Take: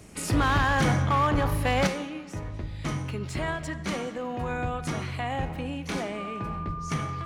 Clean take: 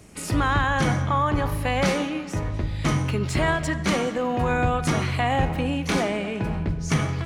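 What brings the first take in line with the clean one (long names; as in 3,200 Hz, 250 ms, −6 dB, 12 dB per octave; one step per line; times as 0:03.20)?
clipped peaks rebuilt −18 dBFS
notch filter 1,200 Hz, Q 30
level correction +8 dB, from 0:01.87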